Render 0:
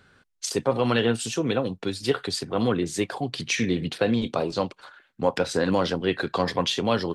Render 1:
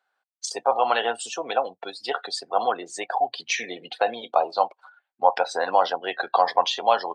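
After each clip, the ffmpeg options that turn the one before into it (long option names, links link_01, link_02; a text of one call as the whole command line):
ffmpeg -i in.wav -af "afftdn=noise_reduction=20:noise_floor=-36,highpass=frequency=760:width_type=q:width=4.9" out.wav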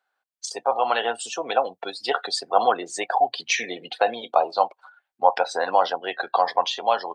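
ffmpeg -i in.wav -af "dynaudnorm=framelen=260:gausssize=11:maxgain=11.5dB,volume=-1.5dB" out.wav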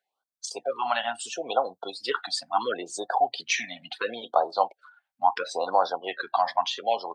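ffmpeg -i in.wav -af "afftfilt=real='re*(1-between(b*sr/1024,380*pow(2500/380,0.5+0.5*sin(2*PI*0.73*pts/sr))/1.41,380*pow(2500/380,0.5+0.5*sin(2*PI*0.73*pts/sr))*1.41))':imag='im*(1-between(b*sr/1024,380*pow(2500/380,0.5+0.5*sin(2*PI*0.73*pts/sr))/1.41,380*pow(2500/380,0.5+0.5*sin(2*PI*0.73*pts/sr))*1.41))':win_size=1024:overlap=0.75,volume=-3dB" out.wav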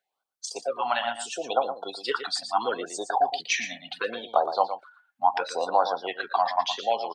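ffmpeg -i in.wav -af "aecho=1:1:116:0.316" out.wav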